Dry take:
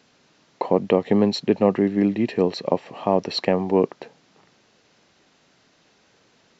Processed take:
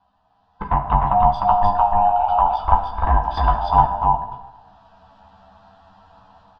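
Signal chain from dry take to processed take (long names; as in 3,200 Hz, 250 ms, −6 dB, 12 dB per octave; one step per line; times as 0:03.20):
neighbouring bands swapped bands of 500 Hz
0:01.22–0:03.68: parametric band 150 Hz −15 dB 1.4 octaves
automatic gain control gain up to 13.5 dB
phaser with its sweep stopped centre 900 Hz, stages 4
flanger swept by the level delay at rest 11.2 ms, full sweep at −10.5 dBFS
high-frequency loss of the air 460 metres
double-tracking delay 15 ms −5.5 dB
single-tap delay 303 ms −3 dB
dense smooth reverb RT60 1 s, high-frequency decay 0.8×, DRR 6 dB
level +2 dB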